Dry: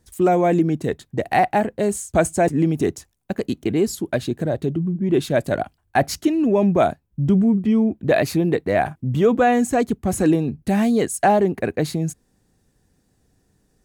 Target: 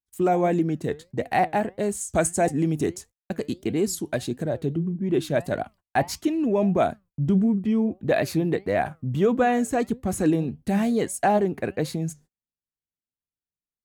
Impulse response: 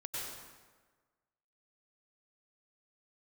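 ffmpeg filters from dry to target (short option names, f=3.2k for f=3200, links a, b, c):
-filter_complex "[0:a]flanger=delay=3.7:depth=3.3:regen=87:speed=1.6:shape=triangular,agate=range=-36dB:threshold=-48dB:ratio=16:detection=peak,asplit=3[a][b][c];[a]afade=t=out:st=2:d=0.02[d];[b]adynamicequalizer=threshold=0.00398:dfrequency=8600:dqfactor=0.72:tfrequency=8600:tqfactor=0.72:attack=5:release=100:ratio=0.375:range=3.5:mode=boostabove:tftype=bell,afade=t=in:st=2:d=0.02,afade=t=out:st=4.42:d=0.02[e];[c]afade=t=in:st=4.42:d=0.02[f];[d][e][f]amix=inputs=3:normalize=0"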